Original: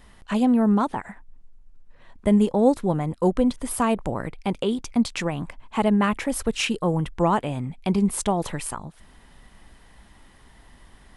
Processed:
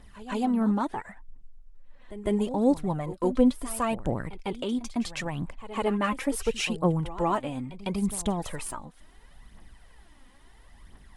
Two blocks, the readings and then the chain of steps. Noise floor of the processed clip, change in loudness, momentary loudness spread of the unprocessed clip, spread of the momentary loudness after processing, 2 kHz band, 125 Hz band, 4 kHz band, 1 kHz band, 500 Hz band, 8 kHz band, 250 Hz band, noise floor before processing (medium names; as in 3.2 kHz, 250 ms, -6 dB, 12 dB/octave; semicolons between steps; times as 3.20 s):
-54 dBFS, -5.0 dB, 11 LU, 11 LU, -4.5 dB, -5.5 dB, -4.5 dB, -5.0 dB, -4.5 dB, -4.5 dB, -5.5 dB, -52 dBFS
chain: phaser 0.73 Hz, delay 4.1 ms, feedback 55%; reverse echo 153 ms -15 dB; trim -6 dB